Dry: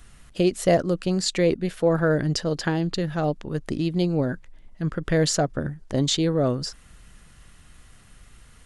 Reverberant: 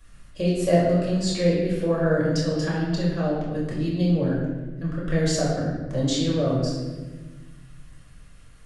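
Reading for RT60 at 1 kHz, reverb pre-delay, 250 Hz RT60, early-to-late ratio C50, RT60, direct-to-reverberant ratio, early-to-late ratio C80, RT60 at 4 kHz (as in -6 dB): 1.0 s, 4 ms, 2.0 s, 1.0 dB, 1.3 s, -6.0 dB, 3.5 dB, 0.90 s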